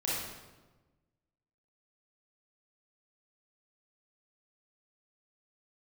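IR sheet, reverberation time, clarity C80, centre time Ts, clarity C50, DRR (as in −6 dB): 1.2 s, 1.5 dB, 87 ms, −2.5 dB, −7.5 dB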